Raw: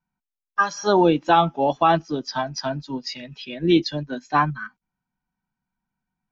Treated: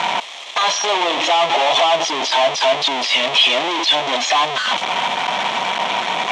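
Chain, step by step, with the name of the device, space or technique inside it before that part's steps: home computer beeper (infinite clipping; speaker cabinet 620–5500 Hz, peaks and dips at 670 Hz +7 dB, 980 Hz +4 dB, 1500 Hz -9 dB, 2300 Hz +3 dB, 3300 Hz +9 dB, 4800 Hz -9 dB); gain +8 dB

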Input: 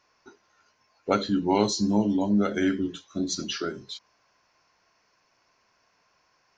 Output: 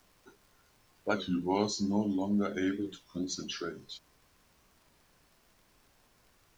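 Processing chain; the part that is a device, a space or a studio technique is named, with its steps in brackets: warped LP (record warp 33 1/3 rpm, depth 160 cents; crackle; pink noise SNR 31 dB); gain -7 dB

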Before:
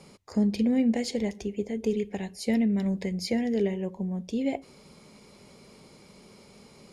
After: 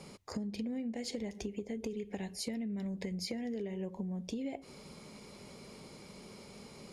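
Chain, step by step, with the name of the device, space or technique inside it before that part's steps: serial compression, peaks first (compressor, threshold -32 dBFS, peak gain reduction 12 dB; compressor 2.5:1, threshold -38 dBFS, peak gain reduction 6.5 dB); gain +1 dB

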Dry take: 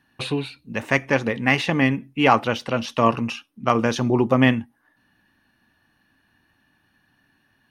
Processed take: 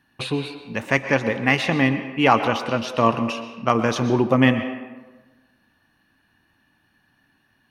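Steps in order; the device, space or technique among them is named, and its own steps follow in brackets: filtered reverb send (on a send: HPF 290 Hz 12 dB/oct + LPF 8700 Hz + reverb RT60 1.2 s, pre-delay 0.11 s, DRR 9 dB)

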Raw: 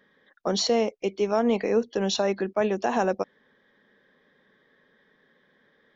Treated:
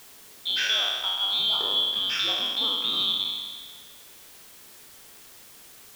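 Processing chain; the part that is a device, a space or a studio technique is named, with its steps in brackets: spectral trails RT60 1.55 s; split-band scrambled radio (four-band scrambler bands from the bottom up 2413; BPF 340–2900 Hz; white noise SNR 20 dB); 0.99–2.34 low shelf 81 Hz +10 dB

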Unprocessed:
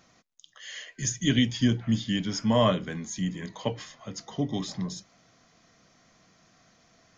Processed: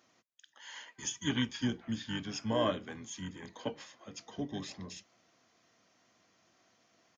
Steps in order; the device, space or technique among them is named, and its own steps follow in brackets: HPF 220 Hz 24 dB/oct; octave pedal (harmoniser -12 st -6 dB); gain -8 dB

